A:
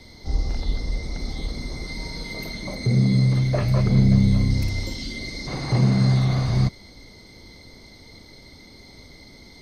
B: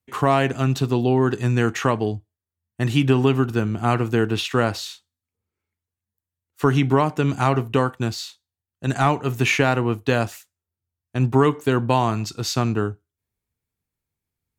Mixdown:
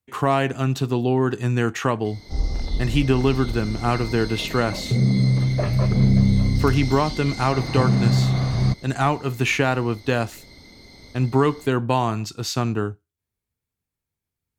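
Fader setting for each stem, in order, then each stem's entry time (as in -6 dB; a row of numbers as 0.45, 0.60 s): 0.0, -1.5 dB; 2.05, 0.00 s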